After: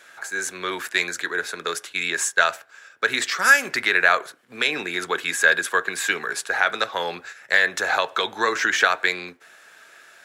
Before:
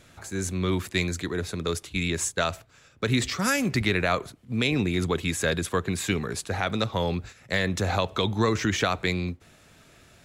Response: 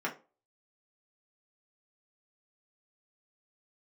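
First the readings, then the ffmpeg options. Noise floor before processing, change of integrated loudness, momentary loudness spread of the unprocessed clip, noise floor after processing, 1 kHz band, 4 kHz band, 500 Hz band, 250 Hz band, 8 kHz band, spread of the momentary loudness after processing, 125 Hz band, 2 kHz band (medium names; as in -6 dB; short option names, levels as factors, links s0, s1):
-56 dBFS, +5.5 dB, 7 LU, -53 dBFS, +6.5 dB, +4.0 dB, 0.0 dB, -10.0 dB, +4.0 dB, 11 LU, -21.0 dB, +11.5 dB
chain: -filter_complex "[0:a]deesser=0.3,highpass=580,equalizer=f=1600:w=4.2:g=11,asplit=2[s0][s1];[1:a]atrim=start_sample=2205[s2];[s1][s2]afir=irnorm=-1:irlink=0,volume=0.15[s3];[s0][s3]amix=inputs=2:normalize=0,volume=1.5"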